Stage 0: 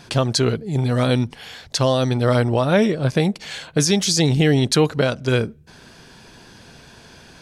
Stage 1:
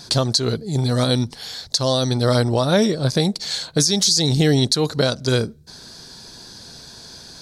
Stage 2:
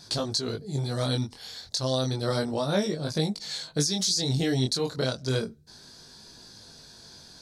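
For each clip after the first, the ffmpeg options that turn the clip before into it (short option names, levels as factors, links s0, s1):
-af "highshelf=f=3400:t=q:w=3:g=7,alimiter=limit=0.473:level=0:latency=1:release=153"
-af "flanger=delay=19:depth=4.7:speed=0.31,volume=0.501"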